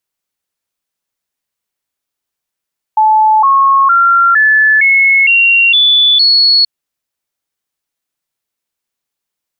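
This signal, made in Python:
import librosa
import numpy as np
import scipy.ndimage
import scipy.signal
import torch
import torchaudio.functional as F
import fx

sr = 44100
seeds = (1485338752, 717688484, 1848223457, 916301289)

y = fx.stepped_sweep(sr, from_hz=867.0, direction='up', per_octave=3, tones=8, dwell_s=0.46, gap_s=0.0, level_db=-5.0)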